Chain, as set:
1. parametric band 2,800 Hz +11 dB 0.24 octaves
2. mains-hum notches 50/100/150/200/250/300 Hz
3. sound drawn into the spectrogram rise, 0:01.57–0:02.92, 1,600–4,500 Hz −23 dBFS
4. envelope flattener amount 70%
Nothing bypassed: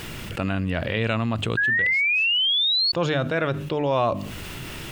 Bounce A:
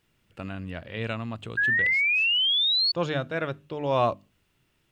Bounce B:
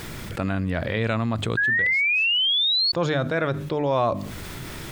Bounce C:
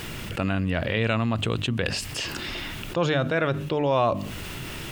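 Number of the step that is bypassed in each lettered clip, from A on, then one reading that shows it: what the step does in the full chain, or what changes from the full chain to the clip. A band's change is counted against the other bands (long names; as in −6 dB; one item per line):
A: 4, change in momentary loudness spread +3 LU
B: 1, change in crest factor −2.0 dB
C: 3, 4 kHz band −11.0 dB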